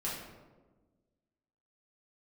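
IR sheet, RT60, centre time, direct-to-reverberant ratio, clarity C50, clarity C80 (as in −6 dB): 1.3 s, 62 ms, −7.5 dB, 1.5 dB, 5.0 dB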